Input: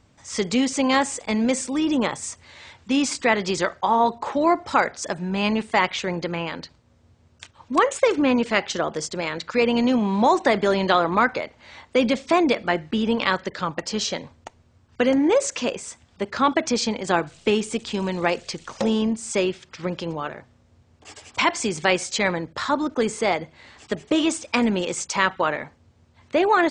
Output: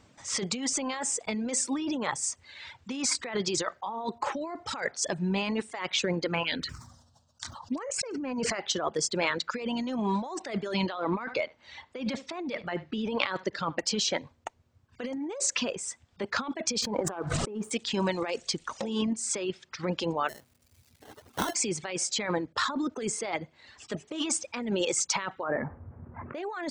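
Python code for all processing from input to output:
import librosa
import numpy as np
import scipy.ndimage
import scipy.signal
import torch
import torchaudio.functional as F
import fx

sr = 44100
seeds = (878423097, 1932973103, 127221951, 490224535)

y = fx.chain(x, sr, fx.peak_eq(hz=4400.0, db=8.5, octaves=1.2),
    fx.env_phaser(low_hz=350.0, high_hz=3600.0, full_db=-19.5),
    fx.sustainer(db_per_s=33.0), at=(6.43, 8.6))
y = fx.chain(y, sr, fx.lowpass(hz=5100.0, slope=12),
    fx.echo_single(ms=73, db=-16.0), at=(10.86, 13.79))
y = fx.chain(y, sr, fx.high_shelf_res(hz=1800.0, db=-12.5, q=1.5),
    fx.leveller(passes=1),
    fx.pre_swell(db_per_s=63.0), at=(16.82, 17.71))
y = fx.median_filter(y, sr, points=25, at=(20.28, 21.54), fade=0.02)
y = fx.sample_hold(y, sr, seeds[0], rate_hz=2400.0, jitter_pct=0, at=(20.28, 21.54), fade=0.02)
y = fx.dmg_crackle(y, sr, seeds[1], per_s=460.0, level_db=-47.0, at=(20.28, 21.54), fade=0.02)
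y = fx.chain(y, sr, fx.cheby2_lowpass(hz=3900.0, order=4, stop_db=50),
    fx.env_flatten(amount_pct=50), at=(25.43, 26.35))
y = fx.dereverb_blind(y, sr, rt60_s=1.3)
y = fx.low_shelf(y, sr, hz=92.0, db=-10.0)
y = fx.over_compress(y, sr, threshold_db=-28.0, ratio=-1.0)
y = y * librosa.db_to_amplitude(-3.0)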